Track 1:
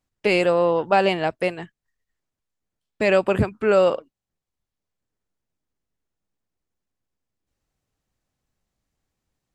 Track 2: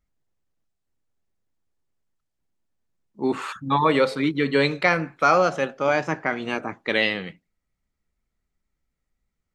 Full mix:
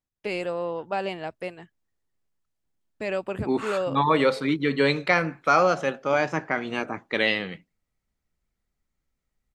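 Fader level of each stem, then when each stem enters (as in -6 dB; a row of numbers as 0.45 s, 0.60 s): -10.5 dB, -1.5 dB; 0.00 s, 0.25 s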